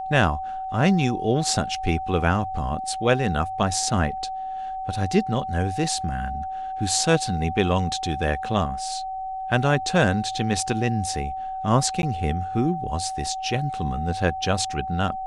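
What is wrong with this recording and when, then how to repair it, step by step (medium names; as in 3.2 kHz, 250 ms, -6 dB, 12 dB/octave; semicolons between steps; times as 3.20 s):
whine 760 Hz -28 dBFS
12.02–12.03 s: dropout 11 ms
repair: band-stop 760 Hz, Q 30; interpolate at 12.02 s, 11 ms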